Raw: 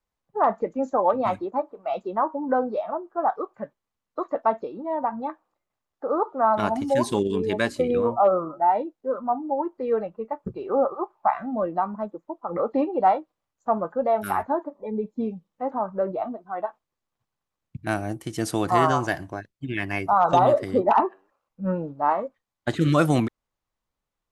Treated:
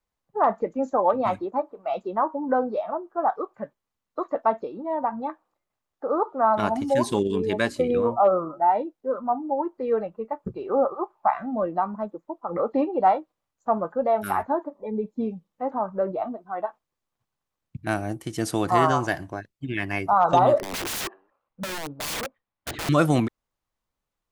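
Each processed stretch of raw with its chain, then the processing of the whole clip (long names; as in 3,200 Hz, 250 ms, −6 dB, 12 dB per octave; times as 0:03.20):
0:20.58–0:22.89: low-pass filter 3,000 Hz + wrap-around overflow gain 25.5 dB
whole clip: no processing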